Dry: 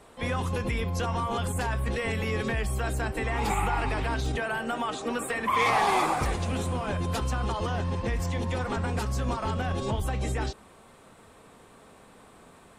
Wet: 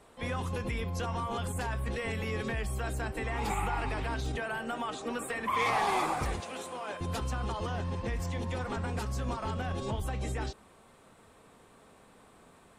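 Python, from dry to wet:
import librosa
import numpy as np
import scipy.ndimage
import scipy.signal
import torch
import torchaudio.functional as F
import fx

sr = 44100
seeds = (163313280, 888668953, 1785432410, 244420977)

y = fx.highpass(x, sr, hz=420.0, slope=12, at=(6.4, 7.01))
y = y * 10.0 ** (-5.0 / 20.0)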